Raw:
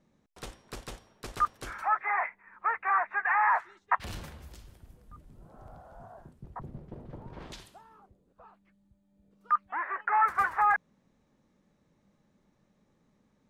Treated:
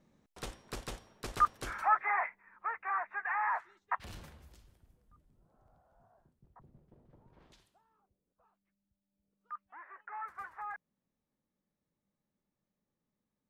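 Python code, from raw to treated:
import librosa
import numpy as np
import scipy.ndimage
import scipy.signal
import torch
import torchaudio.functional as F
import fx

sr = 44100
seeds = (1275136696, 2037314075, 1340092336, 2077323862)

y = fx.gain(x, sr, db=fx.line((1.89, 0.0), (2.7, -8.0), (4.29, -8.0), (5.65, -18.0)))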